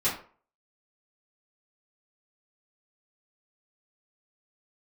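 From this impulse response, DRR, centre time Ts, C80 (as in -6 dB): -11.0 dB, 31 ms, 12.0 dB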